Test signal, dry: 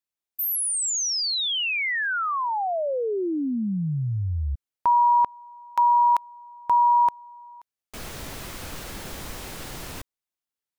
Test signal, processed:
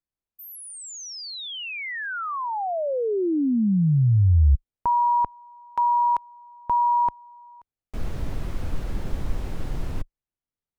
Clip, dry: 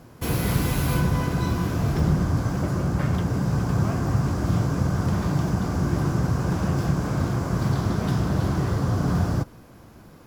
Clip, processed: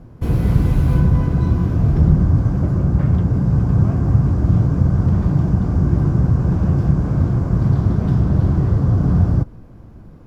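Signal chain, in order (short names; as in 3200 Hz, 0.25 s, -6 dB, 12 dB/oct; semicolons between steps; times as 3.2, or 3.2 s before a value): tilt -3.5 dB/oct; gain -2.5 dB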